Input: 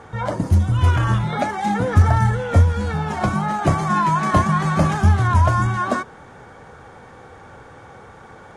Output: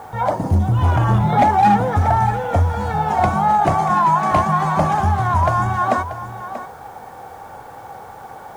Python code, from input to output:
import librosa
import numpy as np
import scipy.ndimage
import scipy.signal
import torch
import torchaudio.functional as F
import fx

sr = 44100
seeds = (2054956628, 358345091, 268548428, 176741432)

p1 = fx.rider(x, sr, range_db=3, speed_s=0.5)
p2 = x + (p1 * librosa.db_to_amplitude(-1.5))
p3 = fx.peak_eq(p2, sr, hz=190.0, db=8.5, octaves=2.3, at=(0.44, 1.77))
p4 = 10.0 ** (-1.0 / 20.0) * np.tanh(p3 / 10.0 ** (-1.0 / 20.0))
p5 = fx.peak_eq(p4, sr, hz=780.0, db=13.5, octaves=0.8)
p6 = fx.quant_dither(p5, sr, seeds[0], bits=8, dither='triangular')
p7 = p6 + fx.echo_single(p6, sr, ms=635, db=-12.5, dry=0)
y = p7 * librosa.db_to_amplitude(-8.0)